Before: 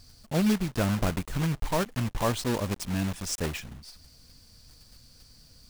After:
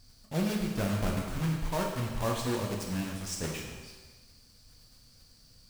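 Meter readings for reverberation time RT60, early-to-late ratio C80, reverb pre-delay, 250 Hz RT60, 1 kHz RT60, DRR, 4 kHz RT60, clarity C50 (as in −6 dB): 1.3 s, 5.0 dB, 8 ms, 1.3 s, 1.3 s, −0.5 dB, 1.3 s, 3.5 dB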